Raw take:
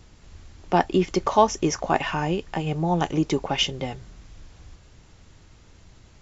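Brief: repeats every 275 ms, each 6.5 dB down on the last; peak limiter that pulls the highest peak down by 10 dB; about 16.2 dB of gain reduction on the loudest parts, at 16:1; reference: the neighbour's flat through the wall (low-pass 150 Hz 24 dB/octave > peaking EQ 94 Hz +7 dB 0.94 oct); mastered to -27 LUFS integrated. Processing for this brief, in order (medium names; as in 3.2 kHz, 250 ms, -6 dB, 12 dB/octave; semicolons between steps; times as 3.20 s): compression 16:1, threshold -27 dBFS; peak limiter -25.5 dBFS; low-pass 150 Hz 24 dB/octave; peaking EQ 94 Hz +7 dB 0.94 oct; feedback delay 275 ms, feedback 47%, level -6.5 dB; trim +16.5 dB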